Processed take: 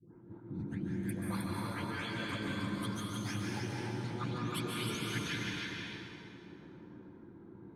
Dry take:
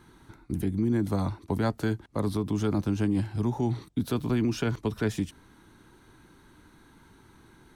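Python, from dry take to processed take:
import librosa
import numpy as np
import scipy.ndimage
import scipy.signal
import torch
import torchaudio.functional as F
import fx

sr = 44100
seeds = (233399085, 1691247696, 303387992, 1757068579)

y = fx.spec_delay(x, sr, highs='late', ms=491)
y = scipy.signal.sosfilt(scipy.signal.butter(2, 110.0, 'highpass', fs=sr, output='sos'), y)
y = fx.tilt_shelf(y, sr, db=-3.5, hz=1400.0)
y = fx.env_lowpass(y, sr, base_hz=490.0, full_db=-27.0)
y = fx.over_compress(y, sr, threshold_db=-41.0, ratio=-1.0)
y = fx.rotary_switch(y, sr, hz=5.0, then_hz=0.9, switch_at_s=1.16)
y = y + 10.0 ** (-4.0 / 20.0) * np.pad(y, (int(312 * sr / 1000.0), 0))[:len(y)]
y = fx.rev_plate(y, sr, seeds[0], rt60_s=2.8, hf_ratio=0.7, predelay_ms=120, drr_db=-3.0)
y = y * librosa.db_to_amplitude(-1.0)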